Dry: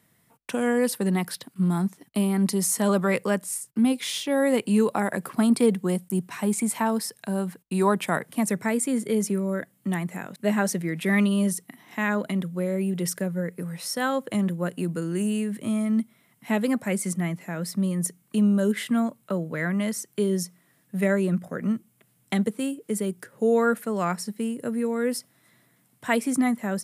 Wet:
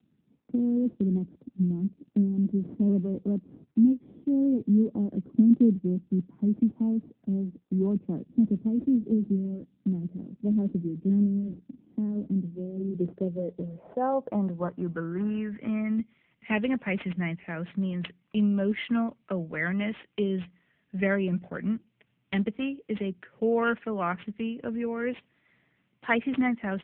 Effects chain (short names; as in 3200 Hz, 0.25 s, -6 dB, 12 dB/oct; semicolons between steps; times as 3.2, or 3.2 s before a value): tracing distortion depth 0.2 ms; low-pass sweep 280 Hz -> 2800 Hz, 12.6–16.11; gain -3 dB; AMR-NB 6.7 kbps 8000 Hz